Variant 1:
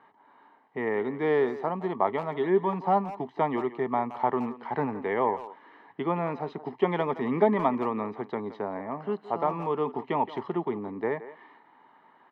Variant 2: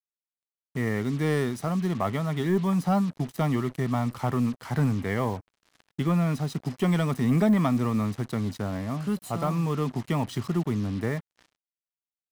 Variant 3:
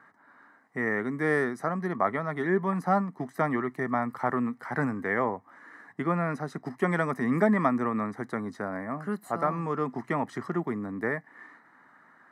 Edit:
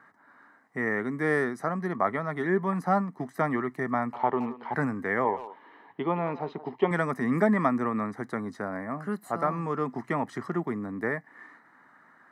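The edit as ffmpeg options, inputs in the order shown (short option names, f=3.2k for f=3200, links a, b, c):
-filter_complex "[0:a]asplit=2[a][b];[2:a]asplit=3[c][d][e];[c]atrim=end=4.132[f];[a]atrim=start=4.128:end=4.742[g];[d]atrim=start=4.738:end=5.252[h];[b]atrim=start=5.248:end=6.912[i];[e]atrim=start=6.908[j];[f][g]acrossfade=d=0.004:c1=hsin:c2=hsin[k];[k][h]acrossfade=d=0.004:c1=hsin:c2=hsin[l];[l][i]acrossfade=d=0.004:c1=hsin:c2=hsin[m];[m][j]acrossfade=d=0.004:c1=hsin:c2=hsin"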